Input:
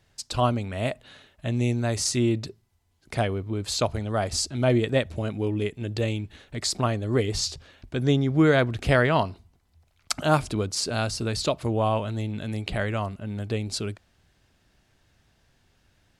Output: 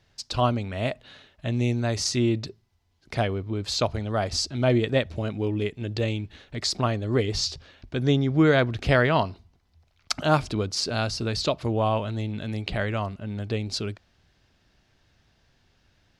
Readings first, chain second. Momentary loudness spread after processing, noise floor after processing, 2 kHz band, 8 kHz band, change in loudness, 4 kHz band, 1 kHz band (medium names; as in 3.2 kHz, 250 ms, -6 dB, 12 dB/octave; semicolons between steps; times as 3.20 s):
11 LU, -67 dBFS, +0.5 dB, -3.0 dB, 0.0 dB, +1.5 dB, 0.0 dB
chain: resonant high shelf 6.8 kHz -7 dB, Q 1.5